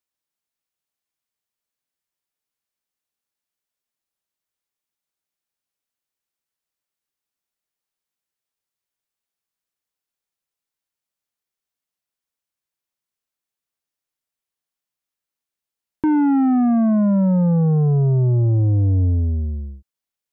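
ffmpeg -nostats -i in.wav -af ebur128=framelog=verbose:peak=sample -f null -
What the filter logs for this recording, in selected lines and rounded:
Integrated loudness:
  I:         -17.4 LUFS
  Threshold: -27.8 LUFS
Loudness range:
  LRA:         8.7 LU
  Threshold: -38.8 LUFS
  LRA low:   -25.5 LUFS
  LRA high:  -16.8 LUFS
Sample peak:
  Peak:      -14.2 dBFS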